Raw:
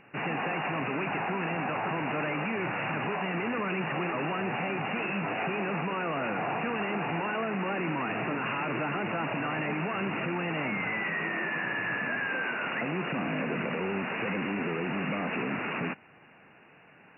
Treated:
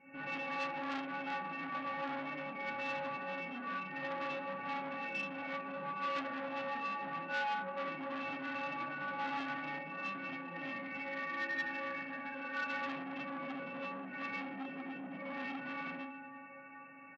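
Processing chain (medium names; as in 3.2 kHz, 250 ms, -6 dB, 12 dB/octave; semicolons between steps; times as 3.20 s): high-pass 160 Hz 12 dB/octave; tone controls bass +9 dB, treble -4 dB; spectral gate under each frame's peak -20 dB strong; compression, threshold -37 dBFS, peak gain reduction 11.5 dB; inharmonic resonator 270 Hz, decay 0.84 s, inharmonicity 0.008; delay 272 ms -21 dB; reverberation RT60 0.70 s, pre-delay 49 ms, DRR -7 dB; transformer saturation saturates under 2 kHz; trim +15 dB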